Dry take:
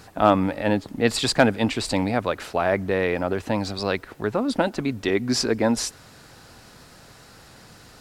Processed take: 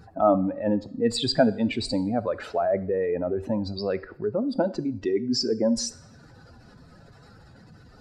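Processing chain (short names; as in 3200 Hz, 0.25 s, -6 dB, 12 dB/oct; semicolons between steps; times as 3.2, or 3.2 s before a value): spectral contrast raised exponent 2.1; two-slope reverb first 0.57 s, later 2.5 s, from -26 dB, DRR 14 dB; gain -2 dB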